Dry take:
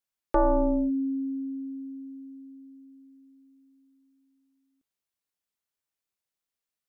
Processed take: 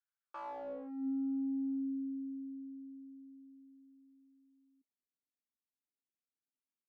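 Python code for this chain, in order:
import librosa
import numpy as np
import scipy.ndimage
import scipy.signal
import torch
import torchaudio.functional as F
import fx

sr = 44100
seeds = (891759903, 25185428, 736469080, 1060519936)

y = np.clip(10.0 ** (35.5 / 20.0) * x, -1.0, 1.0) / 10.0 ** (35.5 / 20.0)
y = fx.filter_sweep_bandpass(y, sr, from_hz=1500.0, to_hz=260.0, start_s=0.23, end_s=1.1, q=4.1)
y = y * 10.0 ** (2.0 / 20.0)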